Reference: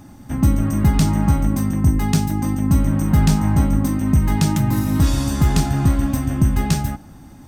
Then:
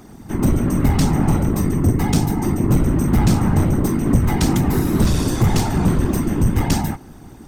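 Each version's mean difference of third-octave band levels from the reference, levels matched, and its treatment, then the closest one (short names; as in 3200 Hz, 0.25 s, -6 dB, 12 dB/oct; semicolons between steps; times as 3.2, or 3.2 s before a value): 3.0 dB: whisperiser; in parallel at -5 dB: wavefolder -13.5 dBFS; on the sum: gain -2 dB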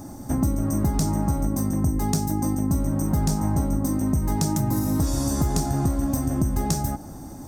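4.5 dB: EQ curve 220 Hz 0 dB, 330 Hz +5 dB, 650 Hz +6 dB, 2900 Hz -10 dB, 5700 Hz +6 dB; compressor 4:1, threshold -23 dBFS, peak gain reduction 11.5 dB; gain +2 dB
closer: first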